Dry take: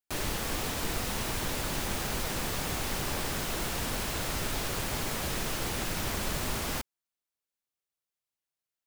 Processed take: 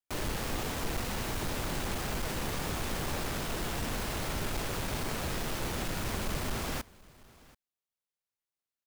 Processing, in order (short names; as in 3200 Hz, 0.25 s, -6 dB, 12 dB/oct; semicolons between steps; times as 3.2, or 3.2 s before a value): half-waves squared off; echo 0.733 s -23 dB; gain -6.5 dB